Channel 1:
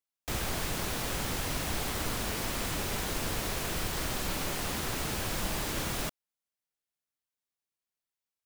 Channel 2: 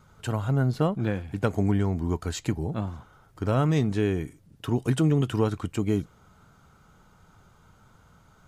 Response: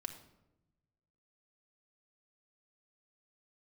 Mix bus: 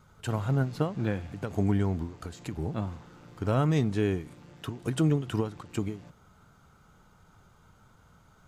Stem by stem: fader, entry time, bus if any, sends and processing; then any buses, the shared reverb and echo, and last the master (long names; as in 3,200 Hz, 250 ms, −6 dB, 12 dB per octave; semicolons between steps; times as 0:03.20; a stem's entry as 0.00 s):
−7.0 dB, 0.00 s, no send, channel vocoder with a chord as carrier major triad, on A#2; automatic ducking −8 dB, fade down 1.85 s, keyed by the second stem
−2.0 dB, 0.00 s, no send, every ending faded ahead of time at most 150 dB per second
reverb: not used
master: no processing